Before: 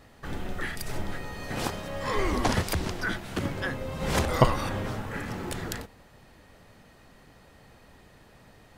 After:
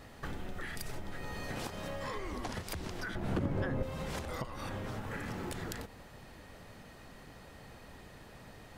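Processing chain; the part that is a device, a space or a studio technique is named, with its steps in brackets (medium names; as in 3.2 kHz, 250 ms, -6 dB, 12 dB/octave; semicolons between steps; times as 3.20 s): serial compression, peaks first (compression 6:1, threshold -34 dBFS, peak gain reduction 19.5 dB; compression 2:1, threshold -41 dBFS, peak gain reduction 7 dB); 3.15–3.83 s: tilt shelf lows +8.5 dB, about 1.5 kHz; trim +2 dB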